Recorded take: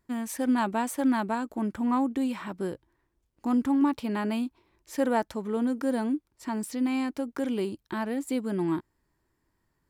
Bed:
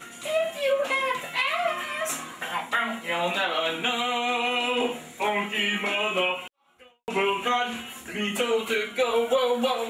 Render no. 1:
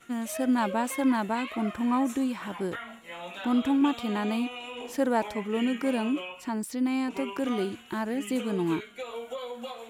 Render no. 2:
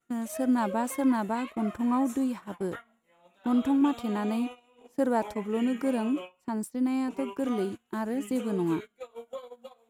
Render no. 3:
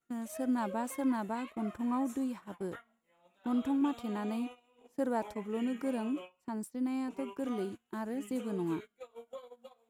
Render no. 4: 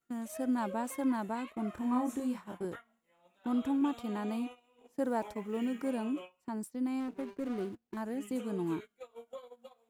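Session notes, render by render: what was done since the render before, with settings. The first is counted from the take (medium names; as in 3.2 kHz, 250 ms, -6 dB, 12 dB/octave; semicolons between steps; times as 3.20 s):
add bed -14 dB
gate -35 dBFS, range -21 dB; peaking EQ 2.8 kHz -7.5 dB 1.7 oct
trim -6.5 dB
1.71–2.65 s: doubling 28 ms -4 dB; 5.04–5.88 s: companded quantiser 8-bit; 7.00–7.97 s: median filter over 41 samples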